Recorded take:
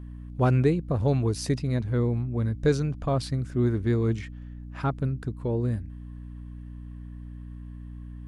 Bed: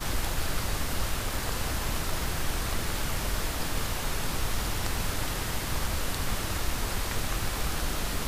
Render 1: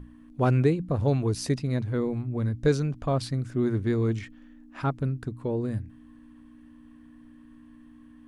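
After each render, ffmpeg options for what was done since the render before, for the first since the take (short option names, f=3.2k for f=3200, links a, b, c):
-af "bandreject=f=60:t=h:w=6,bandreject=f=120:t=h:w=6,bandreject=f=180:t=h:w=6"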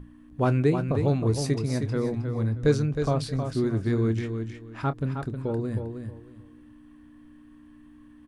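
-filter_complex "[0:a]asplit=2[a][b];[b]adelay=27,volume=-13.5dB[c];[a][c]amix=inputs=2:normalize=0,asplit=2[d][e];[e]aecho=0:1:314|628|942:0.447|0.103|0.0236[f];[d][f]amix=inputs=2:normalize=0"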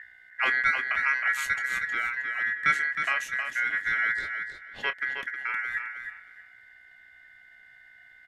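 -af "aeval=exprs='val(0)*sin(2*PI*1800*n/s)':c=same"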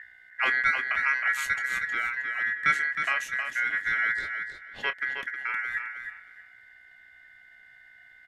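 -af anull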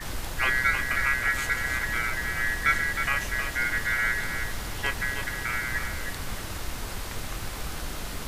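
-filter_complex "[1:a]volume=-4dB[a];[0:a][a]amix=inputs=2:normalize=0"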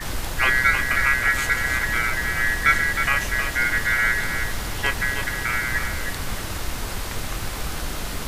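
-af "volume=5.5dB"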